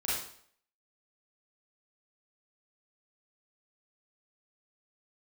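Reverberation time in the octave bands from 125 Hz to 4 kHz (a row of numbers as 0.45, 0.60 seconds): 0.55, 0.55, 0.60, 0.60, 0.55, 0.55 seconds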